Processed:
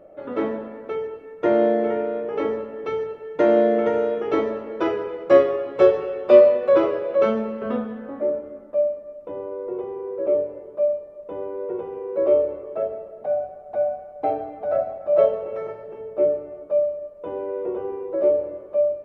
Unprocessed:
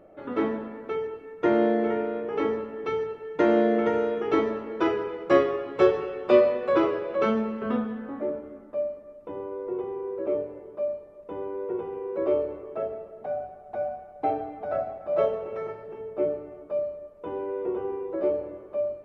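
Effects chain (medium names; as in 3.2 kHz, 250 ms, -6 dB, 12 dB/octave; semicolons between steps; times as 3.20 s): peaking EQ 570 Hz +8.5 dB 0.44 oct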